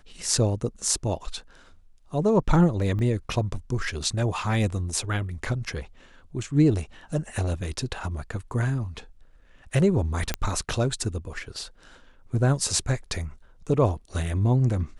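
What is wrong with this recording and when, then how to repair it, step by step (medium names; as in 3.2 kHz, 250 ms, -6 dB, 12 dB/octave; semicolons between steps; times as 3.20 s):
2.99 s: dropout 3.1 ms
10.34 s: pop -10 dBFS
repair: de-click; interpolate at 2.99 s, 3.1 ms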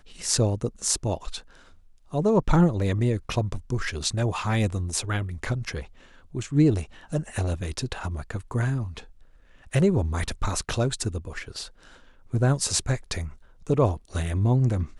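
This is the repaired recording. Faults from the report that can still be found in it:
nothing left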